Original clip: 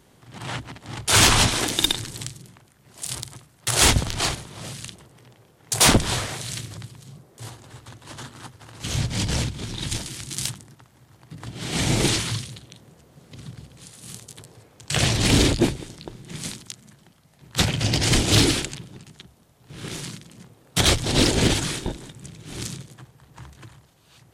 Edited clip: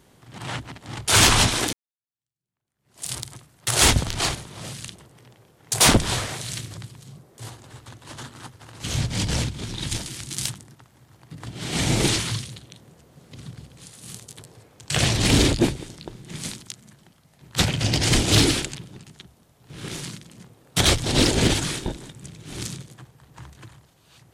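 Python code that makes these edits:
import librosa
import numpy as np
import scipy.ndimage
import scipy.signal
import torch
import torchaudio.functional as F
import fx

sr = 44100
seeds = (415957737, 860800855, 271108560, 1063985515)

y = fx.edit(x, sr, fx.fade_in_span(start_s=1.73, length_s=1.32, curve='exp'), tone=tone)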